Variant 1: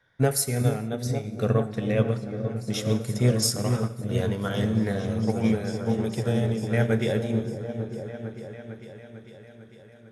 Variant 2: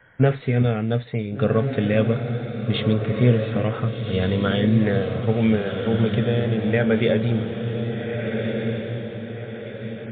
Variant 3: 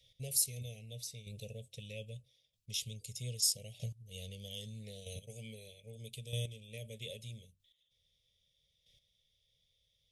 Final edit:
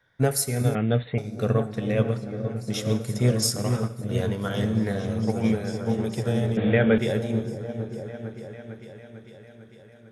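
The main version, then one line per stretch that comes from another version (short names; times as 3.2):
1
0.75–1.18 from 2
6.57–6.98 from 2
not used: 3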